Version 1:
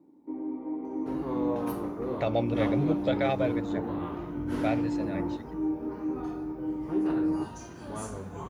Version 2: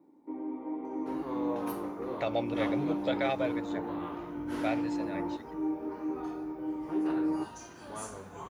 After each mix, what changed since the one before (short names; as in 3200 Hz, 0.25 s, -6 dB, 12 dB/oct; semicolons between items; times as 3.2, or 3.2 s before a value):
first sound +4.0 dB; master: add low shelf 370 Hz -11.5 dB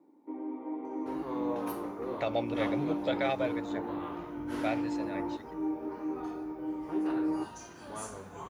first sound: add HPF 210 Hz